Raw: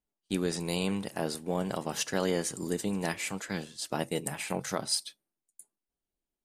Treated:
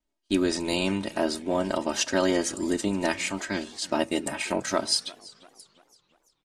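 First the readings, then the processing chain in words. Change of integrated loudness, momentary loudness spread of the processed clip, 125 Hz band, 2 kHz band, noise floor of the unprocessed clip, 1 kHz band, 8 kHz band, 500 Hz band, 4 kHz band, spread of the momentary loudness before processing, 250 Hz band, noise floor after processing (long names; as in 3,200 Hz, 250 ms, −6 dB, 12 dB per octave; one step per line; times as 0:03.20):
+5.5 dB, 5 LU, −1.0 dB, +6.5 dB, below −85 dBFS, +5.5 dB, +3.5 dB, +6.0 dB, +6.5 dB, 6 LU, +6.5 dB, −77 dBFS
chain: low-pass filter 7,100 Hz 12 dB per octave
comb filter 3.2 ms, depth 86%
hum removal 63.28 Hz, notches 2
pitch vibrato 0.9 Hz 19 cents
feedback echo with a swinging delay time 340 ms, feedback 47%, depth 192 cents, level −22 dB
level +4.5 dB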